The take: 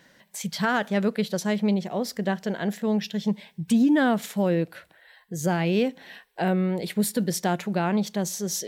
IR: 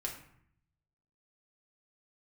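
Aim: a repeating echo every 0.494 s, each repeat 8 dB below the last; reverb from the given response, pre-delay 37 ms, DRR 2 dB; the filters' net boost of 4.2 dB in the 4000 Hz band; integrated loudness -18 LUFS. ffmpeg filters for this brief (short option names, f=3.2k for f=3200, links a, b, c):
-filter_complex "[0:a]equalizer=f=4k:t=o:g=5.5,aecho=1:1:494|988|1482|1976|2470:0.398|0.159|0.0637|0.0255|0.0102,asplit=2[a][b];[1:a]atrim=start_sample=2205,adelay=37[c];[b][c]afir=irnorm=-1:irlink=0,volume=-2.5dB[d];[a][d]amix=inputs=2:normalize=0,volume=5dB"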